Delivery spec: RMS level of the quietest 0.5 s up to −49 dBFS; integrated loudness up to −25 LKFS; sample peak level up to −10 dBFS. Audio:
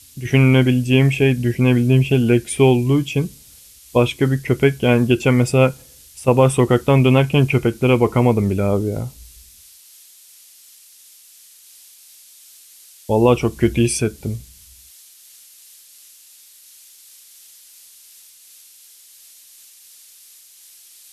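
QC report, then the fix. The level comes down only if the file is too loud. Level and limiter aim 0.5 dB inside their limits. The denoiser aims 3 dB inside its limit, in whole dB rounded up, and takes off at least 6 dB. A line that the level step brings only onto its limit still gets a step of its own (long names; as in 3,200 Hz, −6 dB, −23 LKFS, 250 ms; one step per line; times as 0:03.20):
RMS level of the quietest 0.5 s −47 dBFS: out of spec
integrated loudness −16.5 LKFS: out of spec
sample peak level −3.0 dBFS: out of spec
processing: level −9 dB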